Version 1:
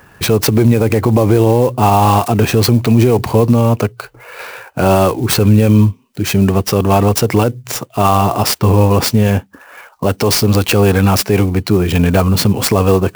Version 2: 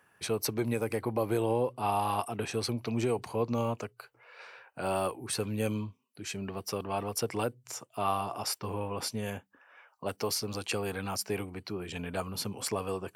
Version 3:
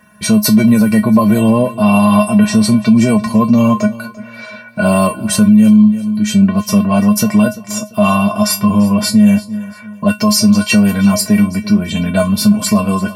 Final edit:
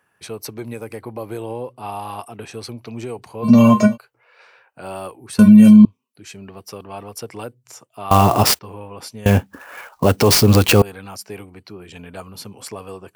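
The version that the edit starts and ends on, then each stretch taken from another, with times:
2
3.45–3.95 s: from 3, crossfade 0.06 s
5.39–5.85 s: from 3
8.11–8.59 s: from 1
9.26–10.82 s: from 1

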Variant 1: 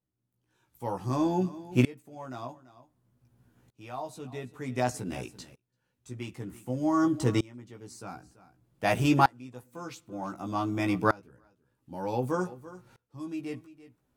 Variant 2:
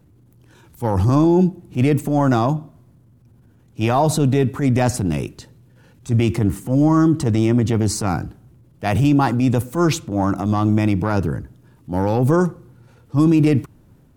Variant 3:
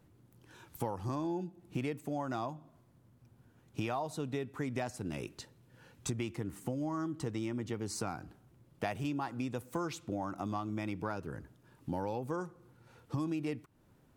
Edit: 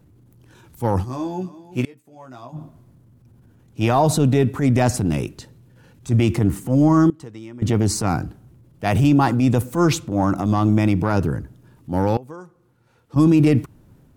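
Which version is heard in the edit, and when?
2
1.01–2.57 s: from 1, crossfade 0.10 s
7.10–7.62 s: from 3
12.17–13.16 s: from 3

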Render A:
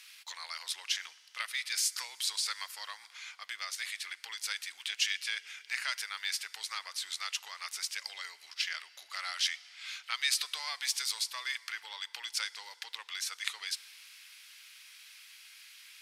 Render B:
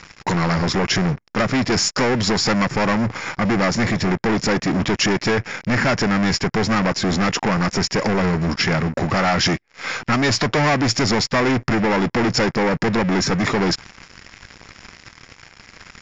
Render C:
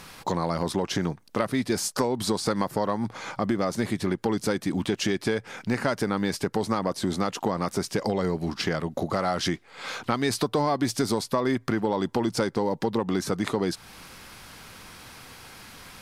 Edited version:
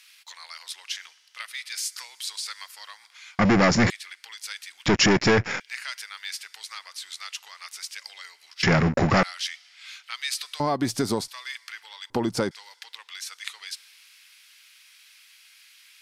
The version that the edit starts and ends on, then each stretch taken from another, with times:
A
3.39–3.90 s: from B
4.86–5.60 s: from B
8.63–9.23 s: from B
10.60–11.28 s: from C
12.10–12.51 s: from C

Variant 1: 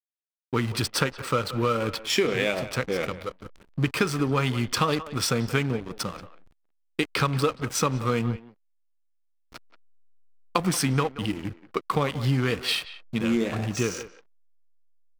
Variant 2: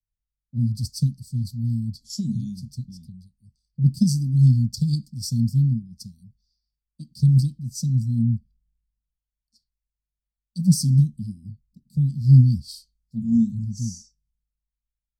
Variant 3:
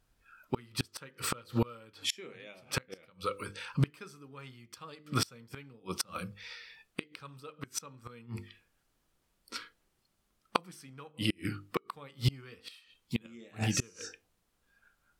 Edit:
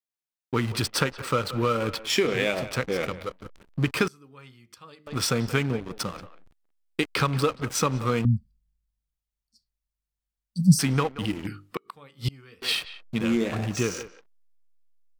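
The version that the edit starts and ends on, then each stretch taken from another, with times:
1
4.08–5.07 s: from 3
8.25–10.79 s: from 2
11.47–12.62 s: from 3

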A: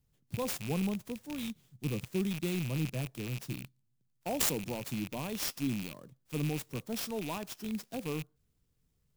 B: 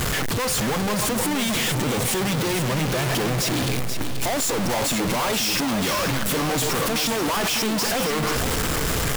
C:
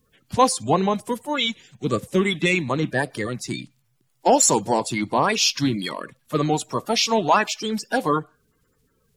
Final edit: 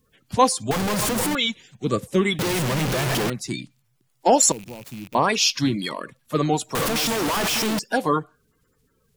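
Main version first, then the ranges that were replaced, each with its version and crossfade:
C
0.71–1.35 s: from B
2.39–3.30 s: from B
4.52–5.15 s: from A
6.75–7.79 s: from B

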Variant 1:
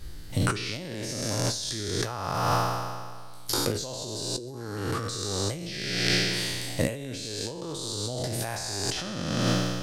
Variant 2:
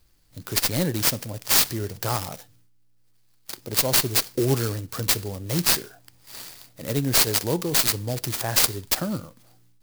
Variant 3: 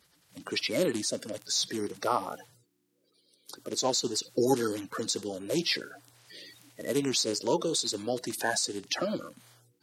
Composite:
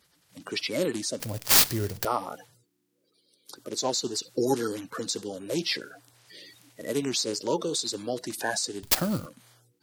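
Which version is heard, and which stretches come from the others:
3
1.20–2.05 s: from 2
8.83–9.26 s: from 2
not used: 1

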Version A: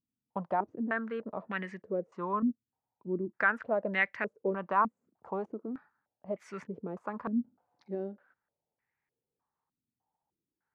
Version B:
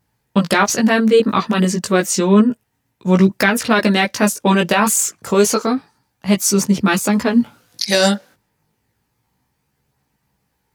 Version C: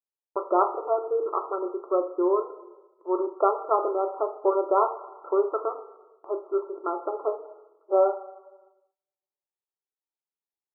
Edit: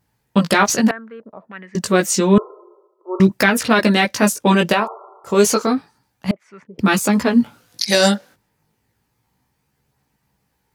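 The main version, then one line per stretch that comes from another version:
B
0.91–1.75 s: from A
2.38–3.20 s: from C
4.80–5.31 s: from C, crossfade 0.16 s
6.31–6.79 s: from A

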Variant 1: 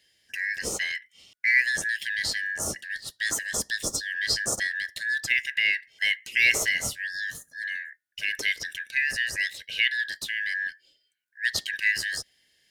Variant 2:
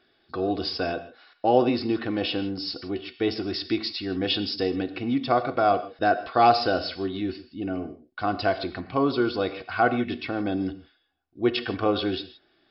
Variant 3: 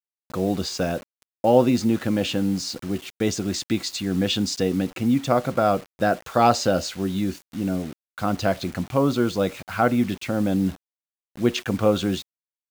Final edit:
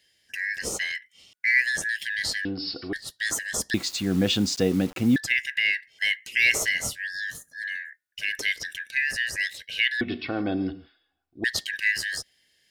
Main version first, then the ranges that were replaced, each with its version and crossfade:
1
2.45–2.93 s: from 2
3.74–5.16 s: from 3
10.01–11.44 s: from 2

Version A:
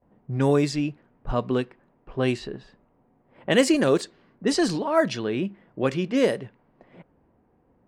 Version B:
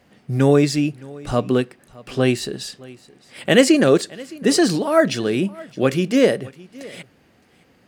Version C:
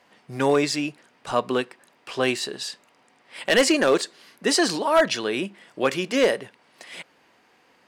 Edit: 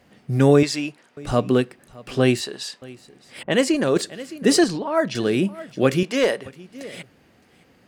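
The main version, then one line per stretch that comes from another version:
B
0.63–1.17 s: from C
2.41–2.82 s: from C
3.43–3.96 s: from A
4.64–5.15 s: from A
6.03–6.46 s: from C

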